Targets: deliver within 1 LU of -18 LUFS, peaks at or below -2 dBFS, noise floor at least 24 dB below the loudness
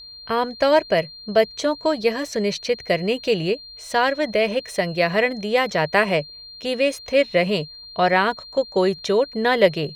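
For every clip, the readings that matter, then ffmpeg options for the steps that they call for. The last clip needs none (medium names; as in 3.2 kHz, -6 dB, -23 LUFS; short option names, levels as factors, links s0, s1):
steady tone 4.2 kHz; tone level -38 dBFS; loudness -21.0 LUFS; peak level -3.5 dBFS; loudness target -18.0 LUFS
-> -af "bandreject=f=4200:w=30"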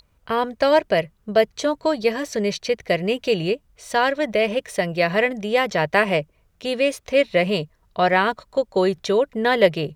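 steady tone not found; loudness -21.0 LUFS; peak level -3.5 dBFS; loudness target -18.0 LUFS
-> -af "volume=1.41,alimiter=limit=0.794:level=0:latency=1"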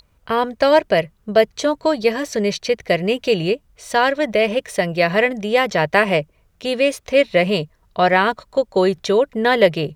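loudness -18.5 LUFS; peak level -2.0 dBFS; noise floor -60 dBFS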